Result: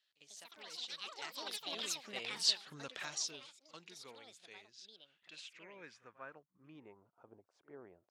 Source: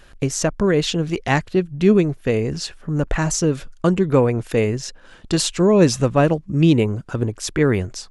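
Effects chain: Doppler pass-by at 2.63, 21 m/s, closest 2.2 m; HPF 67 Hz; pre-echo 48 ms -18 dB; echoes that change speed 0.155 s, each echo +6 st, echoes 3; band-pass sweep 3900 Hz -> 710 Hz, 4.78–7.36; gain +7.5 dB

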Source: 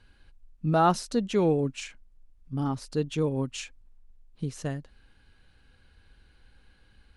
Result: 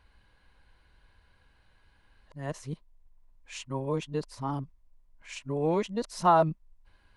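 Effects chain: whole clip reversed; thirty-one-band EQ 250 Hz -4 dB, 630 Hz +7 dB, 1000 Hz +12 dB, 2000 Hz +5 dB; gain -4.5 dB

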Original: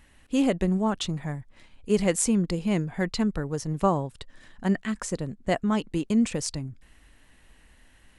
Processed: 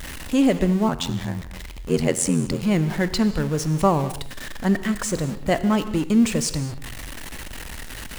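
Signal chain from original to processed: zero-crossing step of -32.5 dBFS; non-linear reverb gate 0.25 s flat, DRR 11.5 dB; 0.88–2.63 ring modulator 43 Hz; gain +3.5 dB

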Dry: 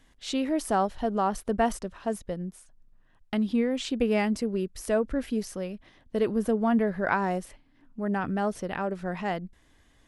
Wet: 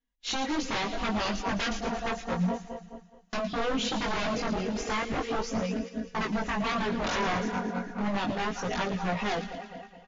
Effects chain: regenerating reverse delay 0.105 s, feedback 84%, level -11.5 dB; reverb removal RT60 0.71 s; expander -36 dBFS; comb 4.2 ms, depth 99%; in parallel at +2.5 dB: compressor, threshold -30 dBFS, peak gain reduction 15 dB; on the sum: wavefolder -21.5 dBFS; chorus voices 2, 0.34 Hz, delay 20 ms, depth 3.2 ms; on a send: thin delay 0.114 s, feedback 55%, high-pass 2300 Hz, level -9.5 dB; on the sum: WMA 128 kbps 16000 Hz

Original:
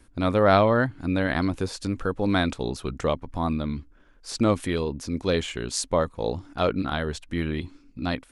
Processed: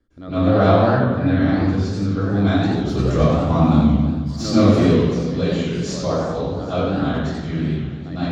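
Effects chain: tracing distortion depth 0.037 ms; LPF 5700 Hz 12 dB/oct; bell 4200 Hz +2.5 dB 1.7 oct; 2.77–4.83 sample leveller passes 2; thinning echo 0.782 s, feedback 52%, level -21.5 dB; reverb RT60 1.1 s, pre-delay 0.102 s, DRR -15 dB; warbling echo 91 ms, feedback 62%, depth 214 cents, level -7 dB; gain -18 dB

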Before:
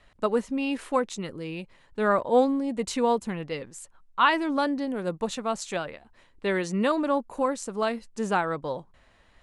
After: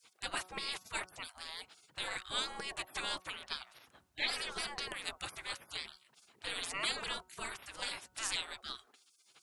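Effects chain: spectral gate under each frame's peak -30 dB weak; de-hum 185 Hz, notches 8; gain +10.5 dB

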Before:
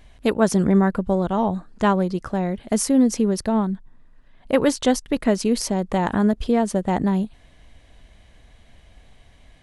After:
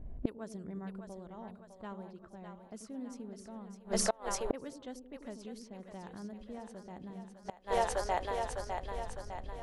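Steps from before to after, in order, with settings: low-pass opened by the level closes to 390 Hz, open at -16 dBFS; split-band echo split 490 Hz, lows 88 ms, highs 0.605 s, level -6 dB; flipped gate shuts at -21 dBFS, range -31 dB; gain +4 dB

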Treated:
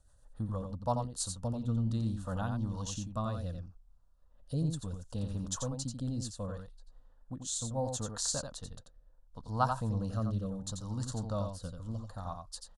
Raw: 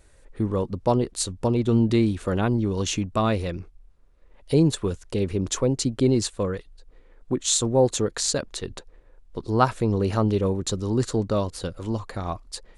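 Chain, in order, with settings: rotary speaker horn 7 Hz, later 0.7 Hz, at 0.45; fixed phaser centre 920 Hz, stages 4; echo 88 ms -6 dB; gain -7 dB

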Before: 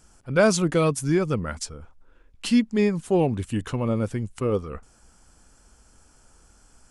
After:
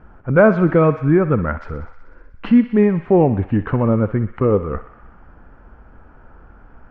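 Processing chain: LPF 1800 Hz 24 dB/oct; in parallel at +3 dB: compressor, threshold -31 dBFS, peak gain reduction 16 dB; on the sum: thinning echo 62 ms, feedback 81%, high-pass 710 Hz, level -12 dB; gain +5 dB

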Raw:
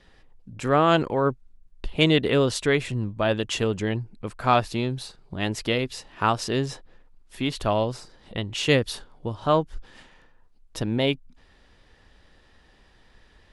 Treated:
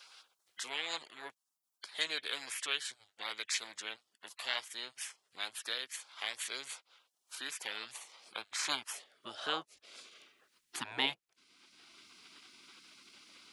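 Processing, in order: high-pass sweep 2100 Hz -> 600 Hz, 7–10.92; spectral gate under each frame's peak -15 dB weak; three-band squash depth 40%; gain +1 dB

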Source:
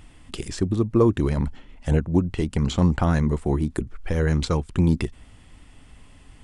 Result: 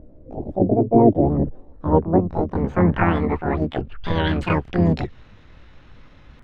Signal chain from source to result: low-pass sweep 290 Hz -> 1500 Hz, 1.15–3.93; harmoniser +3 st -4 dB, +12 st -1 dB; gain -2.5 dB

